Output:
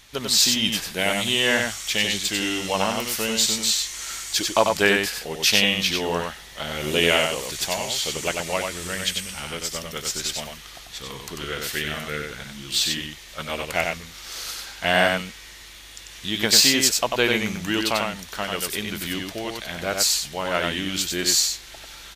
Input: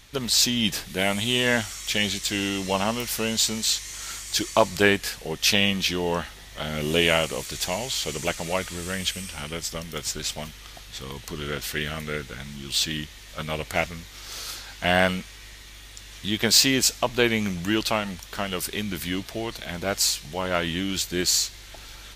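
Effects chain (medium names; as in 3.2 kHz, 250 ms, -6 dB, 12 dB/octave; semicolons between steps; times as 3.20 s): bass shelf 320 Hz -6.5 dB; delay 94 ms -4 dB; trim +1.5 dB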